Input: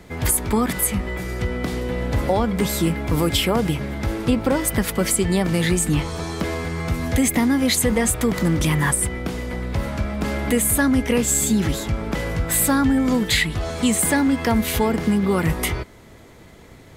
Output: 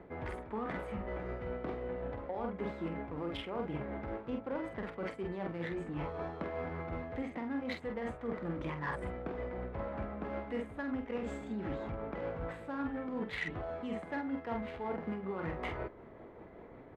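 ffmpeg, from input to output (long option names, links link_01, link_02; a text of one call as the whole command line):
ffmpeg -i in.wav -filter_complex "[0:a]adynamicsmooth=sensitivity=0.5:basefreq=1200,bass=frequency=250:gain=-12,treble=frequency=4000:gain=-11,asplit=2[link_01][link_02];[link_02]adelay=47,volume=-6dB[link_03];[link_01][link_03]amix=inputs=2:normalize=0,areverse,acompressor=threshold=-35dB:ratio=6,areverse,tremolo=f=5.3:d=0.29" out.wav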